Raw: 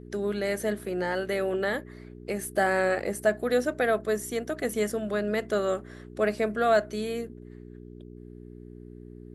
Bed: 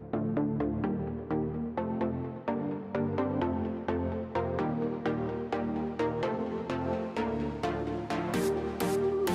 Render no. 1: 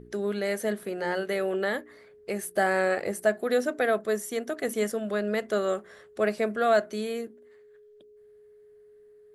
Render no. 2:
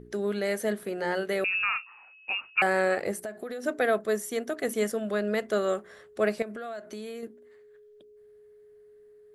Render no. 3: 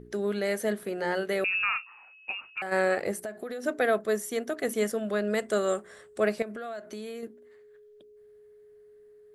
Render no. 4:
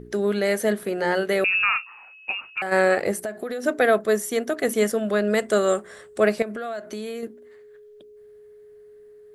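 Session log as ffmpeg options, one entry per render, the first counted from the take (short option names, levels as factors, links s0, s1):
-af "bandreject=f=60:t=h:w=4,bandreject=f=120:t=h:w=4,bandreject=f=180:t=h:w=4,bandreject=f=240:t=h:w=4,bandreject=f=300:t=h:w=4,bandreject=f=360:t=h:w=4"
-filter_complex "[0:a]asettb=1/sr,asplit=3[s0][s1][s2];[s0]atrim=end=1.444[s3];[s1]atrim=start=1.44:end=2.62,asetpts=PTS-STARTPTS,afade=t=in:d=0.004:c=qsin,afade=t=out:st=1.176:d=0.004:c=qsin,lowpass=f=2600:t=q:w=0.5098,lowpass=f=2600:t=q:w=0.6013,lowpass=f=2600:t=q:w=0.9,lowpass=f=2600:t=q:w=2.563,afreqshift=-3000[s4];[s2]atrim=start=2.616[s5];[s3][s4]acrossfade=d=0.004:c1=hsin:c2=qsin[s6];[s6][s5]acrossfade=d=0.004:c1=qsin:c2=hsin,asplit=3[s7][s8][s9];[s7]afade=t=out:st=3.15:d=0.02[s10];[s8]acompressor=threshold=0.0251:ratio=12:attack=3.2:release=140:knee=1:detection=peak,afade=t=in:st=3.15:d=0.02,afade=t=out:st=3.63:d=0.02[s11];[s9]afade=t=in:st=3.63:d=0.02[s12];[s10][s11][s12]amix=inputs=3:normalize=0,asettb=1/sr,asplit=3[s13][s14][s15];[s13]atrim=end=6.424[s16];[s14]atrim=start=6.42:end=7.23,asetpts=PTS-STARTPTS,afade=t=in:d=0.004:c=qsin,afade=t=out:st=0.806:d=0.004:c=qsin,acompressor=threshold=0.02:ratio=12:attack=3.2:release=140:knee=1:detection=peak[s17];[s15]atrim=start=7.226[s18];[s16][s17]acrossfade=d=0.004:c1=hsin:c2=qsin[s19];[s19][s18]acrossfade=d=0.004:c1=qsin:c2=hsin"
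-filter_complex "[0:a]asplit=3[s0][s1][s2];[s0]afade=t=out:st=2.3:d=0.02[s3];[s1]acompressor=threshold=0.02:ratio=3:attack=3.2:release=140:knee=1:detection=peak,afade=t=in:st=2.3:d=0.02,afade=t=out:st=2.71:d=0.02[s4];[s2]afade=t=in:st=2.71:d=0.02[s5];[s3][s4][s5]amix=inputs=3:normalize=0,asettb=1/sr,asplit=3[s6][s7][s8];[s6]atrim=end=5.304[s9];[s7]atrim=start=5.3:end=6.2,asetpts=PTS-STARTPTS,afade=t=in:d=0.004:c=qsin,afade=t=out:st=0.896:d=0.004:c=qsin,equalizer=f=8200:w=3.2:g=13[s10];[s8]atrim=start=6.196[s11];[s9][s10]acrossfade=d=0.004:c1=hsin:c2=qsin[s12];[s12][s11]acrossfade=d=0.004:c1=qsin:c2=hsin"
-af "volume=2.11"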